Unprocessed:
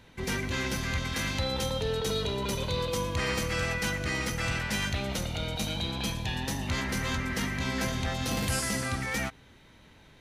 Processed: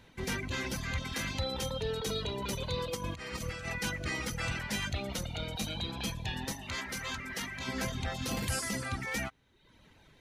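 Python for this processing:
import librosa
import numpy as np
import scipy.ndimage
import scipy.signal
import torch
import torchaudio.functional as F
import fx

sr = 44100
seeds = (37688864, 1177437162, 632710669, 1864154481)

y = fx.dereverb_blind(x, sr, rt60_s=0.83)
y = fx.over_compress(y, sr, threshold_db=-35.0, ratio=-0.5, at=(2.95, 3.71))
y = fx.low_shelf(y, sr, hz=460.0, db=-9.0, at=(6.52, 7.68))
y = F.gain(torch.from_numpy(y), -2.5).numpy()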